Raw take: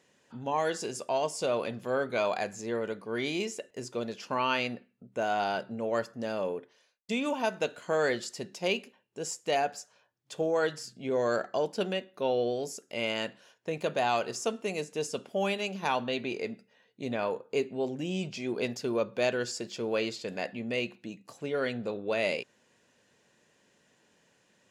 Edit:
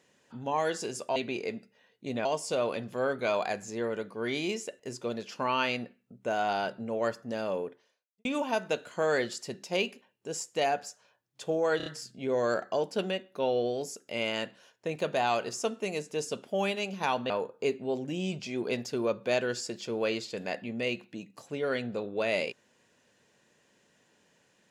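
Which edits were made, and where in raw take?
0:06.56–0:07.16: fade out and dull
0:10.68: stutter 0.03 s, 4 plays
0:16.12–0:17.21: move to 0:01.16

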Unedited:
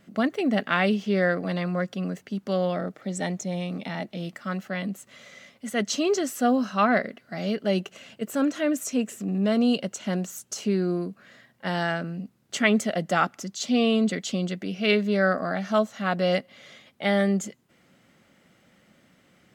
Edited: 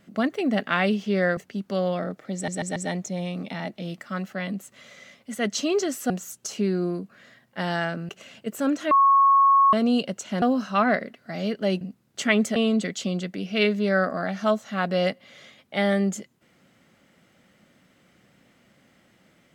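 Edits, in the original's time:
0:01.37–0:02.14: remove
0:03.11: stutter 0.14 s, 4 plays
0:06.45–0:07.84: swap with 0:10.17–0:12.16
0:08.66–0:09.48: beep over 1,100 Hz −13.5 dBFS
0:12.91–0:13.84: remove

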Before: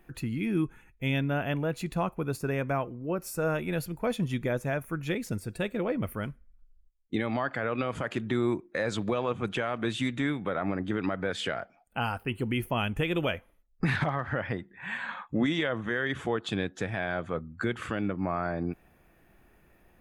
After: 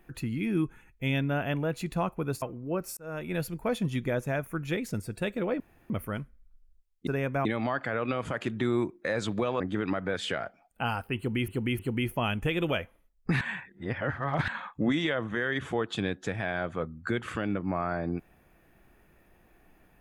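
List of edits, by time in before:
0:02.42–0:02.80: move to 0:07.15
0:03.35–0:03.76: fade in
0:05.98: splice in room tone 0.30 s
0:09.30–0:10.76: remove
0:12.33–0:12.64: repeat, 3 plays
0:13.95–0:15.02: reverse

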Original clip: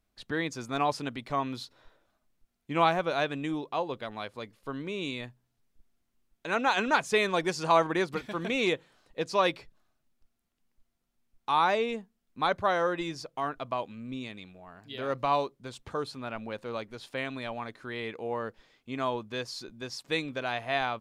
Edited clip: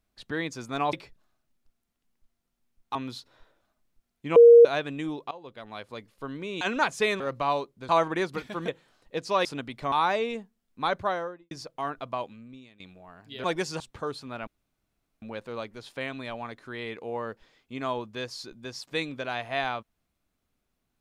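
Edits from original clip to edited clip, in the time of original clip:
0:00.93–0:01.40: swap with 0:09.49–0:11.51
0:02.81–0:03.10: beep over 470 Hz −8.5 dBFS
0:03.76–0:04.36: fade in, from −18 dB
0:05.06–0:06.73: remove
0:07.32–0:07.68: swap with 0:15.03–0:15.72
0:08.47–0:08.72: remove
0:12.57–0:13.10: fade out and dull
0:13.83–0:14.39: fade out quadratic, to −15.5 dB
0:16.39: splice in room tone 0.75 s

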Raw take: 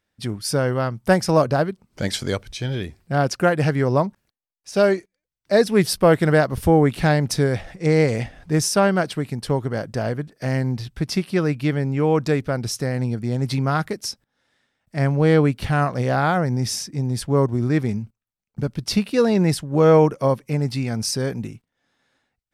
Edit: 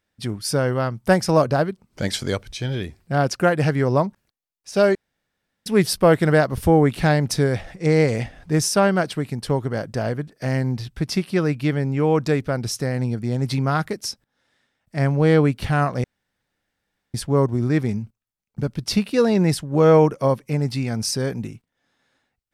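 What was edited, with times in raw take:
0:04.95–0:05.66: fill with room tone
0:16.04–0:17.14: fill with room tone

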